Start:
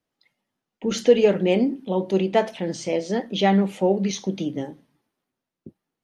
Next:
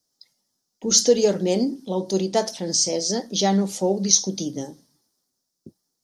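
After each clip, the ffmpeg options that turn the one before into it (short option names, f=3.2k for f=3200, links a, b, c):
-af "highshelf=f=3.7k:t=q:w=3:g=13,volume=-1.5dB"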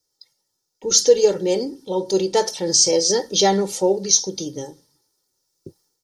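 -af "aecho=1:1:2.2:0.71,dynaudnorm=f=580:g=3:m=9.5dB,volume=-1dB"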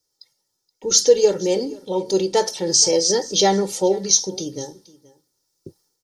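-af "aecho=1:1:475:0.0841"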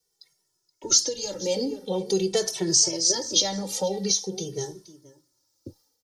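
-filter_complex "[0:a]acrossover=split=170|3000[a][b][c];[b]acompressor=threshold=-23dB:ratio=6[d];[a][d][c]amix=inputs=3:normalize=0,alimiter=limit=-9dB:level=0:latency=1:release=458,asplit=2[e][f];[f]adelay=2.2,afreqshift=-0.46[g];[e][g]amix=inputs=2:normalize=1,volume=3dB"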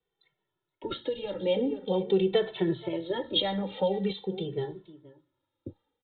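-af "aresample=8000,aresample=44100"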